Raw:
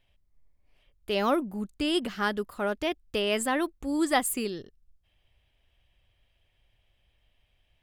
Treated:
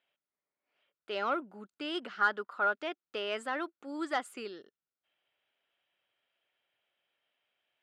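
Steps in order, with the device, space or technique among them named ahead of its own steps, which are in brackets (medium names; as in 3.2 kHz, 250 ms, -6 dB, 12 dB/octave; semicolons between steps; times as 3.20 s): intercom (band-pass 360–4300 Hz; peaking EQ 1.4 kHz +10.5 dB 0.26 oct; saturation -13.5 dBFS, distortion -20 dB); high-pass 120 Hz 12 dB/octave; 2.21–2.72 s: peaking EQ 1.1 kHz +6 dB 1.5 oct; trim -6.5 dB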